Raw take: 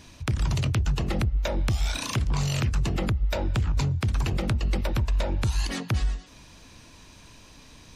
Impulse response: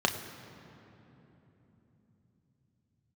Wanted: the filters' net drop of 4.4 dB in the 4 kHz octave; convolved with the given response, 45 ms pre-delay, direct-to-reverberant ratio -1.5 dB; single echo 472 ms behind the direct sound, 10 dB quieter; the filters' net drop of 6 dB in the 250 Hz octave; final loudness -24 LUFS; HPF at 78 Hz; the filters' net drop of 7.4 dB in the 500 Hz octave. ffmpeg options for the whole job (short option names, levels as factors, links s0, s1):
-filter_complex "[0:a]highpass=78,equalizer=f=250:t=o:g=-8.5,equalizer=f=500:t=o:g=-7,equalizer=f=4000:t=o:g=-5.5,aecho=1:1:472:0.316,asplit=2[s0][s1];[1:a]atrim=start_sample=2205,adelay=45[s2];[s1][s2]afir=irnorm=-1:irlink=0,volume=0.335[s3];[s0][s3]amix=inputs=2:normalize=0,volume=1.58"